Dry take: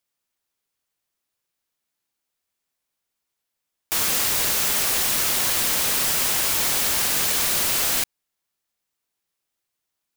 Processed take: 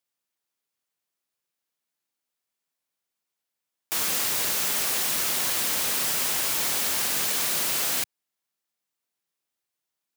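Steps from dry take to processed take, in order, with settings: high-pass 120 Hz 12 dB/octave; trim -4 dB

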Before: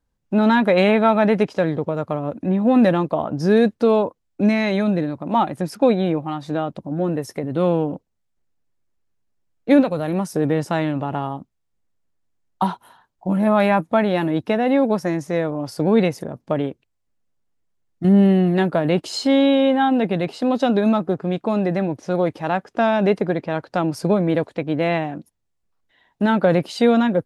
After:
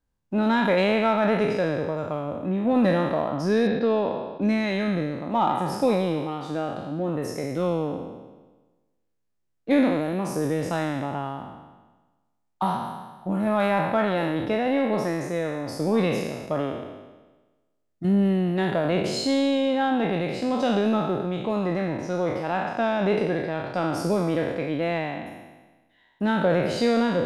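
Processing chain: spectral sustain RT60 1.24 s; 3.67–4.42 s: low-pass 4.3 kHz 24 dB/octave; in parallel at -11.5 dB: saturation -18.5 dBFS, distortion -8 dB; on the sum: trim -8 dB

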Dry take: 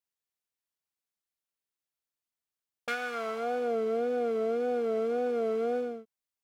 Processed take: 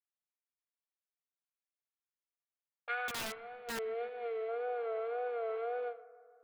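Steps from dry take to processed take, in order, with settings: 3.28–4.49 s: time-frequency box 470–1700 Hz -8 dB; gate -34 dBFS, range -12 dB; Chebyshev band-pass 360–4200 Hz, order 4; three-band isolator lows -20 dB, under 510 Hz, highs -16 dB, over 2.7 kHz; in parallel at -3 dB: compressor with a negative ratio -42 dBFS, ratio -0.5; 3.08–3.79 s: on the sum: integer overflow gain 32 dB; on a send: bucket-brigade echo 154 ms, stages 2048, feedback 65%, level -19 dB; on the sum: trim -2 dB

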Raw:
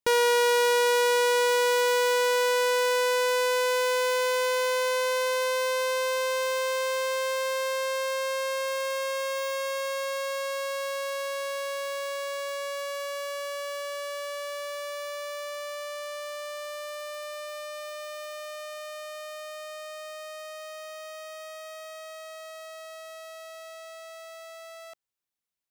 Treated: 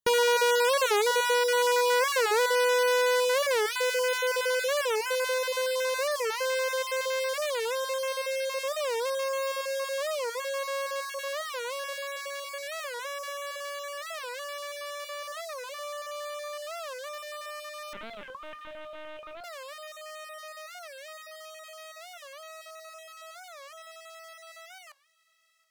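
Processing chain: random holes in the spectrogram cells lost 21%; 17.93–19.45 s: LPC vocoder at 8 kHz pitch kept; peaking EQ 730 Hz -15 dB 0.21 oct; feedback echo behind a high-pass 707 ms, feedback 64%, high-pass 1.5 kHz, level -21.5 dB; on a send at -12.5 dB: reverberation RT60 0.25 s, pre-delay 3 ms; on the sum: warped record 45 rpm, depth 250 cents

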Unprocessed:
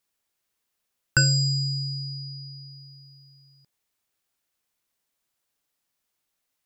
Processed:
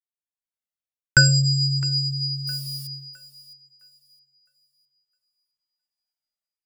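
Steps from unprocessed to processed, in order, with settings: 2.47–2.87 s: zero-crossing glitches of -40.5 dBFS; level rider gain up to 12 dB; gate -36 dBFS, range -26 dB; thinning echo 661 ms, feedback 31%, high-pass 250 Hz, level -16.5 dB; Shepard-style flanger falling 0.53 Hz; trim +2.5 dB

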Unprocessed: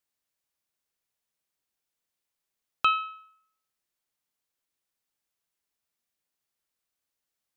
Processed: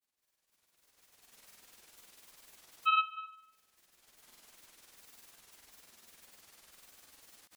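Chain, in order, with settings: recorder AGC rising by 22 dB/s; peaking EQ 130 Hz -9.5 dB 0.32 oct; granulator 80 ms, grains 20 per s, spray 100 ms, pitch spread up and down by 0 st; on a send: feedback echo behind a high-pass 69 ms, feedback 60%, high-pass 1.5 kHz, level -20 dB

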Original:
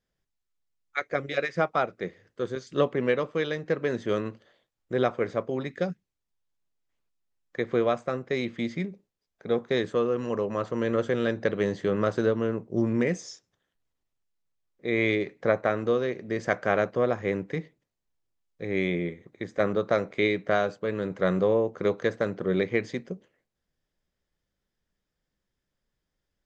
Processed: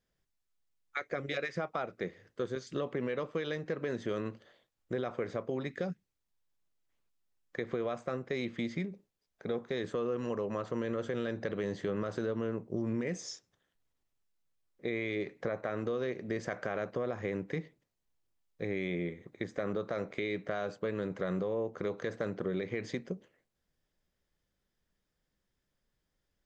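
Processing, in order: peak limiter -19.5 dBFS, peak gain reduction 10 dB; compression 2.5:1, threshold -33 dBFS, peak gain reduction 7 dB

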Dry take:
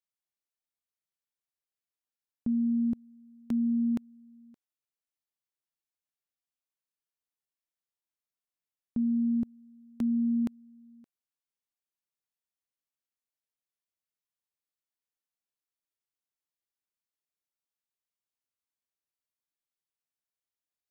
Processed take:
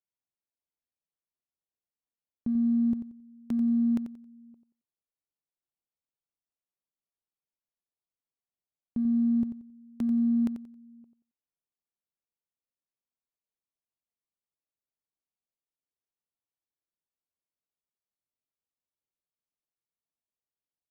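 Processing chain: local Wiener filter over 25 samples; feedback delay 90 ms, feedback 25%, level -10 dB

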